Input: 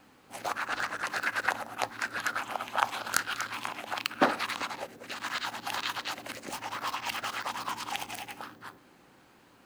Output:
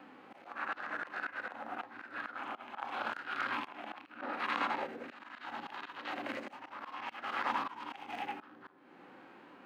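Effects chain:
volume swells 365 ms
three-way crossover with the lows and the highs turned down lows −18 dB, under 190 Hz, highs −23 dB, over 3,100 Hz
harmonic and percussive parts rebalanced percussive −13 dB
level +9 dB

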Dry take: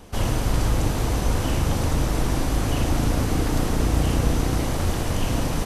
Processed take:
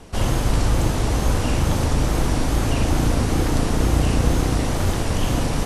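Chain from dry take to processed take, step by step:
low-pass filter 12,000 Hz 24 dB per octave
tape wow and flutter 110 cents
level +2.5 dB

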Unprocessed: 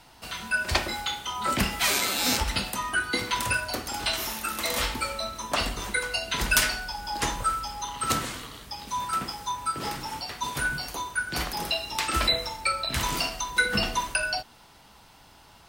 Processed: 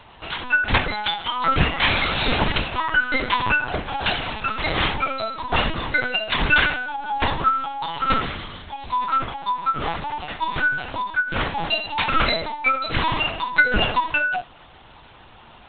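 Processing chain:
linear-prediction vocoder at 8 kHz pitch kept
level +7.5 dB

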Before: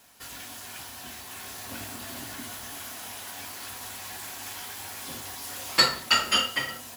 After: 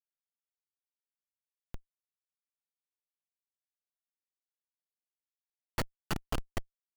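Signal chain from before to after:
downward compressor 4 to 1, threshold −34 dBFS, peak gain reduction 16.5 dB
comparator with hysteresis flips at −26 dBFS
level +10 dB

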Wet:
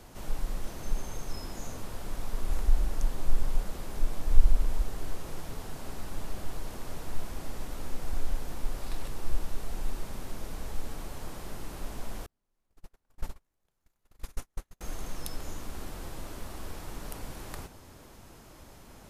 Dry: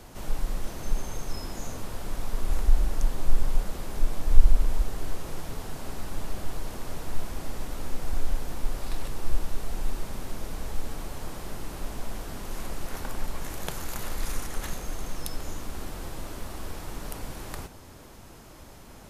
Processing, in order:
0:12.26–0:14.81: noise gate −23 dBFS, range −44 dB
level −3.5 dB

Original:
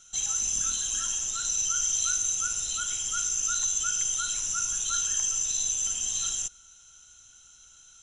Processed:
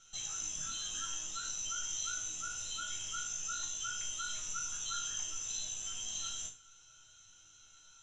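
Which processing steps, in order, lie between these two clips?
low-pass filter 5,300 Hz 12 dB per octave
in parallel at −1 dB: downward compressor, threshold −43 dBFS, peak gain reduction 14.5 dB
on the sum: resonators tuned to a chord G#2 minor, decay 0.35 s
level +6 dB

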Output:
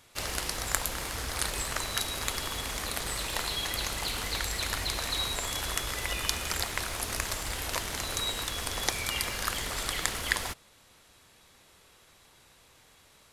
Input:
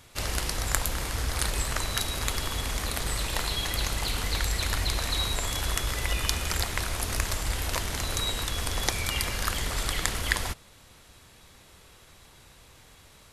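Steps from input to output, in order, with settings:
low-shelf EQ 160 Hz −9 dB
in parallel at −9 dB: bit reduction 7 bits
on the sum: level −4 dB

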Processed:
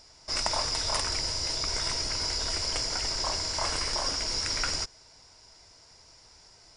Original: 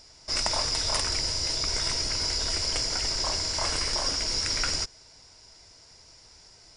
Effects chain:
parametric band 960 Hz +3.5 dB 1.4 octaves
level −2.5 dB

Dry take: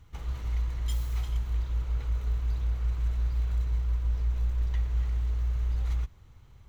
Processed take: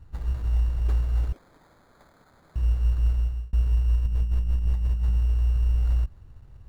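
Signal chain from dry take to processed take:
0:01.32–0:02.56: Chebyshev band-pass filter 1,600–3,600 Hz, order 2
sample-rate reduction 2,800 Hz, jitter 0%
spectral tilt −1.5 dB per octave
0:03.12–0:03.53: fade out
0:04.06–0:05.17: compressor whose output falls as the input rises −22 dBFS, ratio −0.5

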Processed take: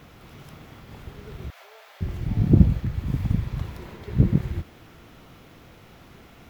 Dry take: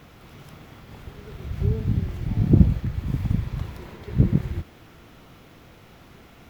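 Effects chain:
0:01.50–0:02.01: elliptic high-pass filter 600 Hz, stop band 60 dB

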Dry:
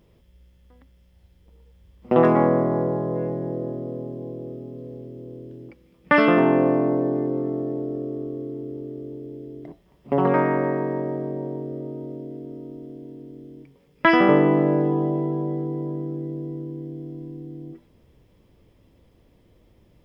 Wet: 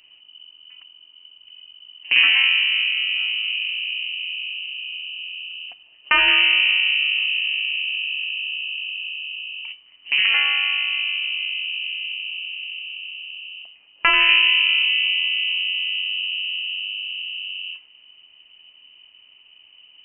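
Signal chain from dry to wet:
sub-octave generator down 2 octaves, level 0 dB
in parallel at −2 dB: downward compressor, threshold −28 dBFS, peak gain reduction 16.5 dB
on the sum: voice inversion scrambler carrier 3,000 Hz
level −2 dB

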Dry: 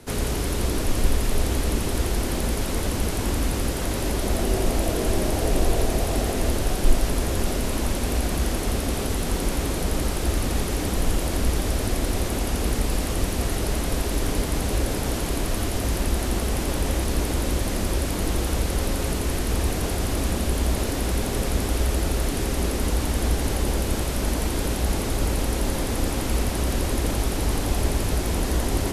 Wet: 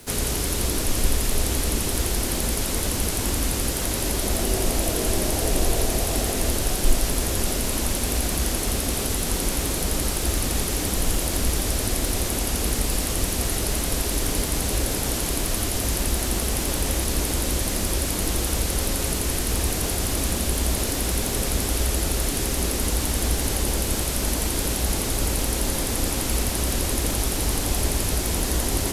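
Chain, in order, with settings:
high-shelf EQ 3,300 Hz +9.5 dB
bit reduction 8 bits
level −1.5 dB

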